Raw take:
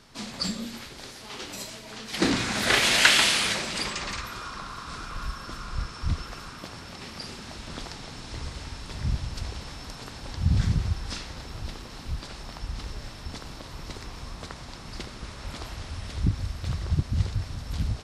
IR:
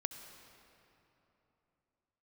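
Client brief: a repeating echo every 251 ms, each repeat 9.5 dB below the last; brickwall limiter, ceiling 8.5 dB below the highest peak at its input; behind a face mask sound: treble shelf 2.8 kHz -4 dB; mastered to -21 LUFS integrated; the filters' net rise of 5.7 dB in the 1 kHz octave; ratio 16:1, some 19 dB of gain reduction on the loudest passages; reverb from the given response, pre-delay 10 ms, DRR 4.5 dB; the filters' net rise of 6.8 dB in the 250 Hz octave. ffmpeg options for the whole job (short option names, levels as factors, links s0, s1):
-filter_complex "[0:a]equalizer=f=250:t=o:g=8.5,equalizer=f=1000:t=o:g=7.5,acompressor=threshold=0.0282:ratio=16,alimiter=level_in=1.41:limit=0.0631:level=0:latency=1,volume=0.708,aecho=1:1:251|502|753|1004:0.335|0.111|0.0365|0.012,asplit=2[s0][s1];[1:a]atrim=start_sample=2205,adelay=10[s2];[s1][s2]afir=irnorm=-1:irlink=0,volume=0.631[s3];[s0][s3]amix=inputs=2:normalize=0,highshelf=f=2800:g=-4,volume=5.96"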